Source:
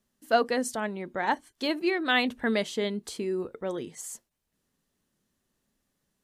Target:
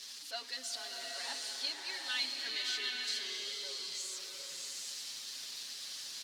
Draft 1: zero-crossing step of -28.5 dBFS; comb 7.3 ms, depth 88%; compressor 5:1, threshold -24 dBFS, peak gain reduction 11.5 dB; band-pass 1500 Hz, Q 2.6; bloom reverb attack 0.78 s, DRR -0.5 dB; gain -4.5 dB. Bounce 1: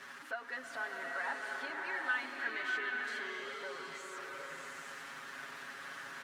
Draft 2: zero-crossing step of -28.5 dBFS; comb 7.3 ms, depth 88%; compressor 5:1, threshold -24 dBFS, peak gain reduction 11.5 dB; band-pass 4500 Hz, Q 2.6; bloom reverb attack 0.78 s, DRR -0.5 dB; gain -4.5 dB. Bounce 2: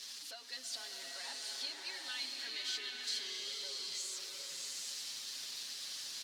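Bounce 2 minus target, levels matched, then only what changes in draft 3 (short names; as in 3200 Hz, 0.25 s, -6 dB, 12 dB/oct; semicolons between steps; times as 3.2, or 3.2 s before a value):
compressor: peak gain reduction +11.5 dB
remove: compressor 5:1, threshold -24 dBFS, peak gain reduction 11.5 dB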